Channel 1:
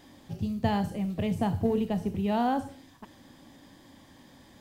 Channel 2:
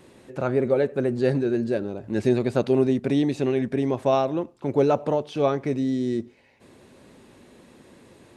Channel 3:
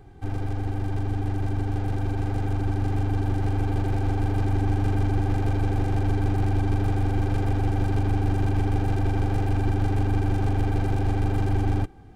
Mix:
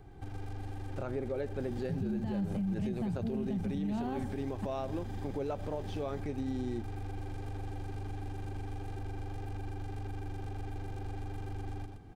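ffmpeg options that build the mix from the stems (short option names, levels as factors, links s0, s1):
-filter_complex "[0:a]lowshelf=f=250:t=q:w=3:g=8,acompressor=threshold=0.0708:ratio=6,adelay=1600,volume=0.841[s0];[1:a]adelay=600,volume=0.316[s1];[2:a]alimiter=limit=0.0944:level=0:latency=1:release=44,acrossover=split=1000|2700[s2][s3][s4];[s2]acompressor=threshold=0.0178:ratio=4[s5];[s3]acompressor=threshold=0.00141:ratio=4[s6];[s4]acompressor=threshold=0.00126:ratio=4[s7];[s5][s6][s7]amix=inputs=3:normalize=0,volume=0.596,asplit=2[s8][s9];[s9]volume=0.596,aecho=0:1:120:1[s10];[s0][s1][s8][s10]amix=inputs=4:normalize=0,alimiter=level_in=1.41:limit=0.0631:level=0:latency=1:release=103,volume=0.708"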